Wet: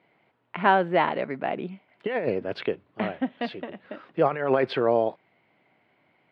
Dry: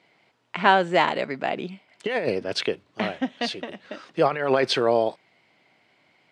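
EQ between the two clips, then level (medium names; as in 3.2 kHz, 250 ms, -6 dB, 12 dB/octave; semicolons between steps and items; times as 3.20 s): distance through air 450 m; 0.0 dB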